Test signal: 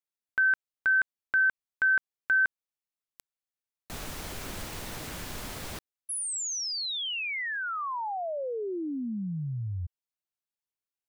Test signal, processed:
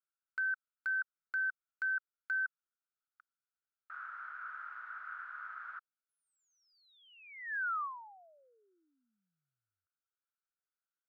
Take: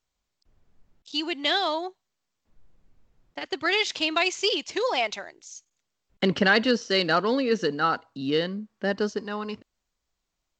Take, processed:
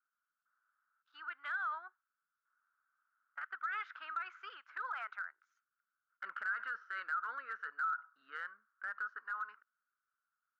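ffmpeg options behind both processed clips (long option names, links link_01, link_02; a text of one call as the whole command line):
ffmpeg -i in.wav -af "asuperpass=centerf=1400:order=4:qfactor=5,acompressor=threshold=-42dB:ratio=5:attack=0.16:release=76:knee=1:detection=peak,volume=8dB" out.wav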